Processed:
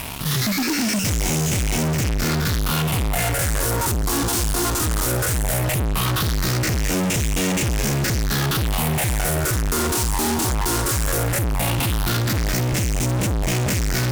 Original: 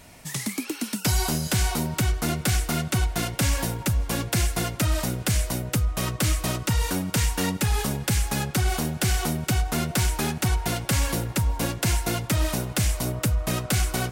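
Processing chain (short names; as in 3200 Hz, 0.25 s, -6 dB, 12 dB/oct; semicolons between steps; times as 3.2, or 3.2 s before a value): stepped spectrum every 50 ms; phaser stages 6, 0.17 Hz, lowest notch 150–1200 Hz; fuzz box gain 52 dB, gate -51 dBFS; gain -6.5 dB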